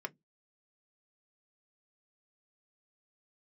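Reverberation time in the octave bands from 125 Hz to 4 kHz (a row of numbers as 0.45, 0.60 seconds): 0.25, 0.25, 0.15, 0.10, 0.10, 0.10 seconds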